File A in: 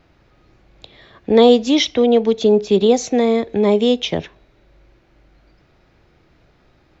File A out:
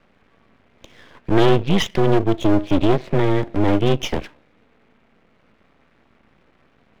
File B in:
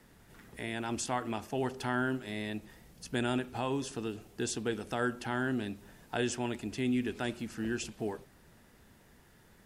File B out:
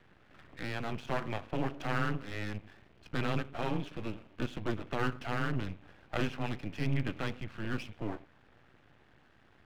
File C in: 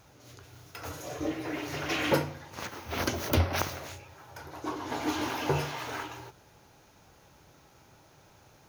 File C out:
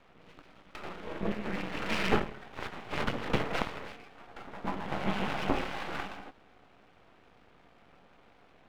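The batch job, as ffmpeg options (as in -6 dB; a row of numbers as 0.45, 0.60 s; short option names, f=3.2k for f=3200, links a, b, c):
-af "acontrast=86,highpass=f=180:t=q:w=0.5412,highpass=f=180:t=q:w=1.307,lowpass=f=3.3k:t=q:w=0.5176,lowpass=f=3.3k:t=q:w=0.7071,lowpass=f=3.3k:t=q:w=1.932,afreqshift=-110,aeval=exprs='max(val(0),0)':c=same,volume=-3dB"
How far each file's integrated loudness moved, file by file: -4.0, -1.5, -2.0 LU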